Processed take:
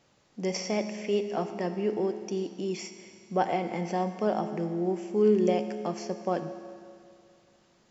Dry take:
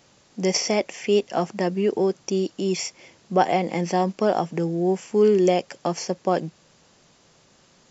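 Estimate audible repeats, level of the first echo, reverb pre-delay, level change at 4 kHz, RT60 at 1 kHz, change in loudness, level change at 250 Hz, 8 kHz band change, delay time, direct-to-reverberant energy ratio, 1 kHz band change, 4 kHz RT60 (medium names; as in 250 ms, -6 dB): no echo, no echo, 14 ms, -10.5 dB, 2.3 s, -6.5 dB, -5.5 dB, no reading, no echo, 8.5 dB, -7.0 dB, 2.2 s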